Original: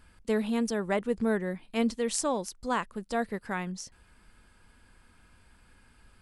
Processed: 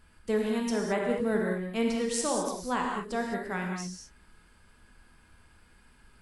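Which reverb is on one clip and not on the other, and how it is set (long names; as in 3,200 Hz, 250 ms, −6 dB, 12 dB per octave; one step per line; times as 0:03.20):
reverb whose tail is shaped and stops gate 240 ms flat, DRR −0.5 dB
level −2.5 dB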